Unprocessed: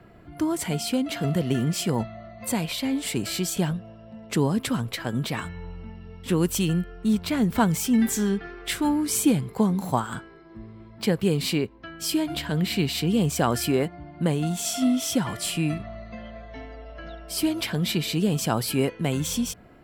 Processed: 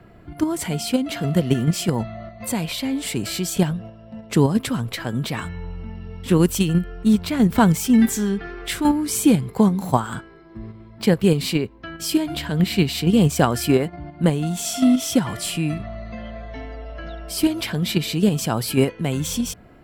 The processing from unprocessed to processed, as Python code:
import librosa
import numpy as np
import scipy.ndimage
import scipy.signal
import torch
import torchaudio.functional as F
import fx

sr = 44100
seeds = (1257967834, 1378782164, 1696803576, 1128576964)

p1 = fx.low_shelf(x, sr, hz=140.0, db=3.5)
p2 = fx.level_steps(p1, sr, step_db=21)
y = p1 + (p2 * 10.0 ** (1.0 / 20.0))